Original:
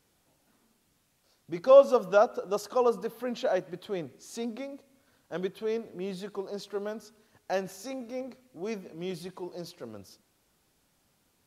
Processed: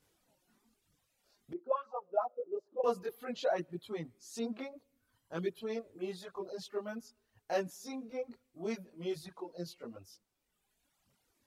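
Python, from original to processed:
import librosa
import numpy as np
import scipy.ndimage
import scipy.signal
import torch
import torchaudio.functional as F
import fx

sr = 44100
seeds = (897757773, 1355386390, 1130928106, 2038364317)

y = fx.chorus_voices(x, sr, voices=2, hz=0.54, base_ms=20, depth_ms=2.8, mix_pct=55)
y = fx.auto_wah(y, sr, base_hz=290.0, top_hz=1500.0, q=5.0, full_db=-17.0, direction='up', at=(1.53, 2.84))
y = fx.dereverb_blind(y, sr, rt60_s=1.7)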